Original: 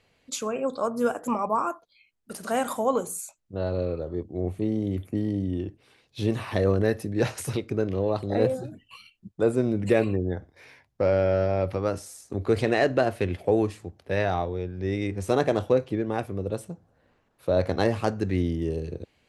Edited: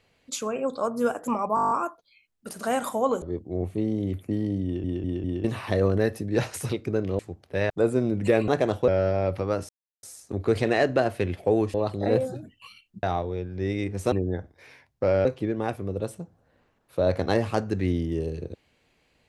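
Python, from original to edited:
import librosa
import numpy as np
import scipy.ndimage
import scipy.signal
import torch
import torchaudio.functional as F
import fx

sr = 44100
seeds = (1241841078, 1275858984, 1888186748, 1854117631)

y = fx.edit(x, sr, fx.stutter(start_s=1.55, slice_s=0.02, count=9),
    fx.cut(start_s=3.06, length_s=1.0),
    fx.stutter_over(start_s=5.48, slice_s=0.2, count=4),
    fx.swap(start_s=8.03, length_s=1.29, other_s=13.75, other_length_s=0.51),
    fx.swap(start_s=10.1, length_s=1.13, other_s=15.35, other_length_s=0.4),
    fx.insert_silence(at_s=12.04, length_s=0.34), tone=tone)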